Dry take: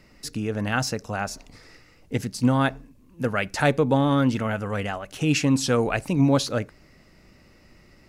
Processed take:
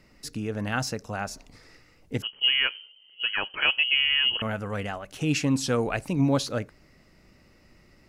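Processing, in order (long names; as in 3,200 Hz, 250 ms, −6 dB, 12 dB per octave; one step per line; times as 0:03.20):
0:02.22–0:04.42: voice inversion scrambler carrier 3,100 Hz
level −3.5 dB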